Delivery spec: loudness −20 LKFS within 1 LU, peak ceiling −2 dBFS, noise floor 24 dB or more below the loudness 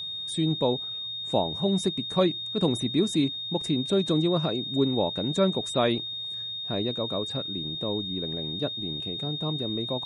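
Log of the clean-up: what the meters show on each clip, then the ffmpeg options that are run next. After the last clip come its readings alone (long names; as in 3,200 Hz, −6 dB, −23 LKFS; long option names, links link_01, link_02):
interfering tone 3,700 Hz; level of the tone −32 dBFS; integrated loudness −27.0 LKFS; sample peak −10.5 dBFS; target loudness −20.0 LKFS
→ -af "bandreject=frequency=3700:width=30"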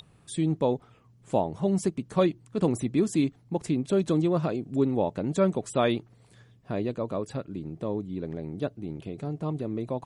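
interfering tone none found; integrated loudness −28.5 LKFS; sample peak −11.5 dBFS; target loudness −20.0 LKFS
→ -af "volume=8.5dB"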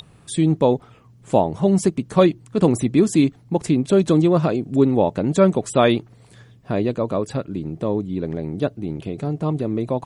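integrated loudness −20.0 LKFS; sample peak −3.0 dBFS; background noise floor −50 dBFS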